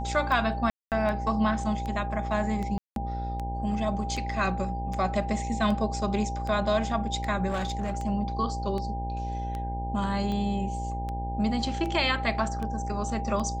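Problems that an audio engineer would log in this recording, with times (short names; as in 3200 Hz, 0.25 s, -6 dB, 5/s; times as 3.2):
buzz 60 Hz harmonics 16 -33 dBFS
tick 78 rpm
tone 800 Hz -34 dBFS
0.7–0.92 gap 0.218 s
2.78–2.96 gap 0.182 s
7.49–7.98 clipped -24.5 dBFS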